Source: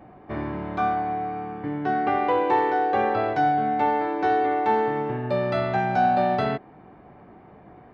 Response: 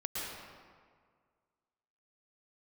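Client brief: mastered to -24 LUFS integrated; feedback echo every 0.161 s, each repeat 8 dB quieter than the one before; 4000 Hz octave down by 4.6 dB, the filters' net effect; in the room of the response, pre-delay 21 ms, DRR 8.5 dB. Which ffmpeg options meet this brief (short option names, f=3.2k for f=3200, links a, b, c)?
-filter_complex "[0:a]equalizer=f=4k:t=o:g=-6,aecho=1:1:161|322|483|644|805:0.398|0.159|0.0637|0.0255|0.0102,asplit=2[a][b];[1:a]atrim=start_sample=2205,adelay=21[c];[b][c]afir=irnorm=-1:irlink=0,volume=-12dB[d];[a][d]amix=inputs=2:normalize=0,volume=-0.5dB"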